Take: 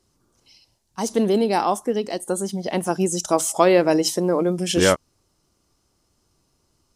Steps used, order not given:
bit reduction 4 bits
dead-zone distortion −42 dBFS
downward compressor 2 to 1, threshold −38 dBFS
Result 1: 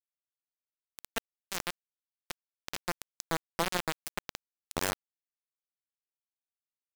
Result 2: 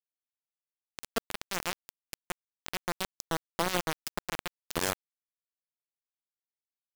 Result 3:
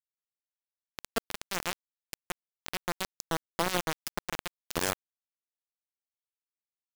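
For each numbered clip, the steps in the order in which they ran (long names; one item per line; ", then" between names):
downward compressor, then dead-zone distortion, then bit reduction
downward compressor, then bit reduction, then dead-zone distortion
dead-zone distortion, then downward compressor, then bit reduction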